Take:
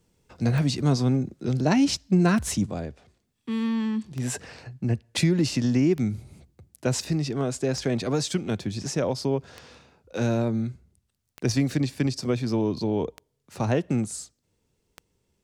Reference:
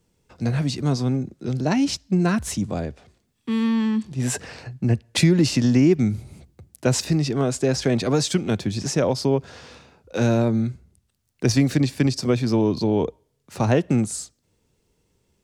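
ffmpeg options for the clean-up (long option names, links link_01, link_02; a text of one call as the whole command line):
ffmpeg -i in.wav -af "adeclick=threshold=4,asetnsamples=nb_out_samples=441:pad=0,asendcmd='2.66 volume volume 5dB',volume=0dB" out.wav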